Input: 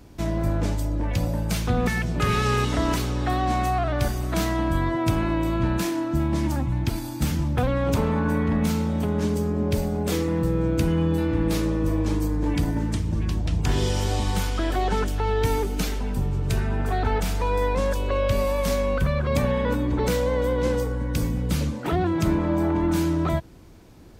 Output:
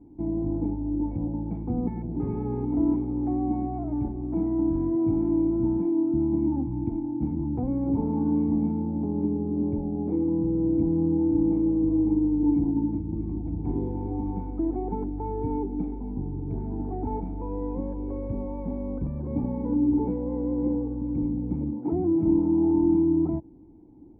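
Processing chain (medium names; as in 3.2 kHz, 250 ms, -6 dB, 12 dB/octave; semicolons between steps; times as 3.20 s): cascade formant filter u; band-stop 590 Hz, Q 12; trim +6 dB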